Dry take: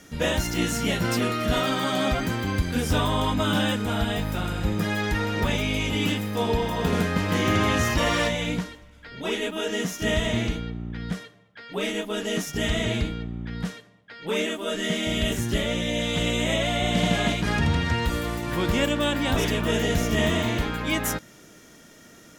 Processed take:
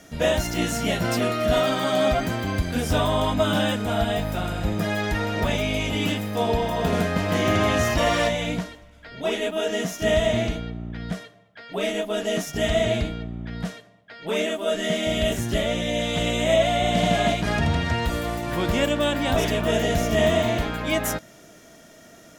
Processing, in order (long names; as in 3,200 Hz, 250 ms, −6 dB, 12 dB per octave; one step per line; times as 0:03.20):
parametric band 660 Hz +12.5 dB 0.22 octaves